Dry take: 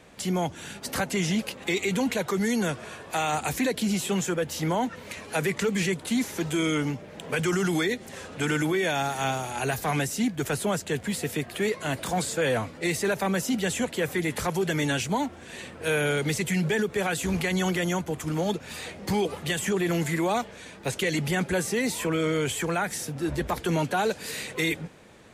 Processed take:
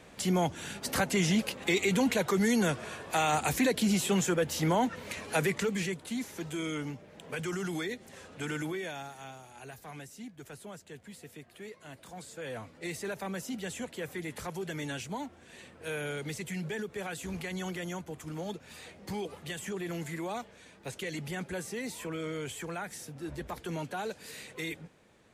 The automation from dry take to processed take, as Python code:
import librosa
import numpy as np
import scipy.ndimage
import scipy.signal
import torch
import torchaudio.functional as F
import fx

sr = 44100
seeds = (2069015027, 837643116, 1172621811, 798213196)

y = fx.gain(x, sr, db=fx.line((5.34, -1.0), (6.05, -9.5), (8.68, -9.5), (9.27, -19.0), (12.12, -19.0), (12.83, -11.0)))